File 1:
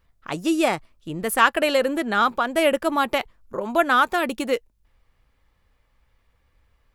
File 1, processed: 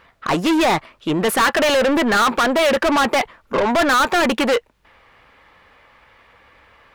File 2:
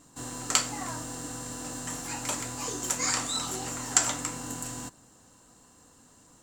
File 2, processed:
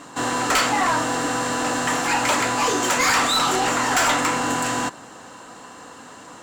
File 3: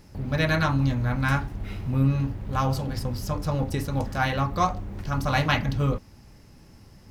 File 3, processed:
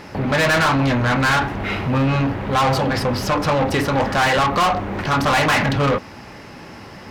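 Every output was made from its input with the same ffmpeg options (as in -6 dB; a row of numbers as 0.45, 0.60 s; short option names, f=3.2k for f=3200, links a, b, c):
-filter_complex "[0:a]bass=f=250:g=0,treble=f=4k:g=-12,asplit=2[a][b];[b]highpass=f=720:p=1,volume=36dB,asoftclip=type=tanh:threshold=-3dB[c];[a][c]amix=inputs=2:normalize=0,lowpass=f=5.9k:p=1,volume=-6dB,volume=-6dB"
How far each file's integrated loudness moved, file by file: +4.5, +10.0, +8.0 LU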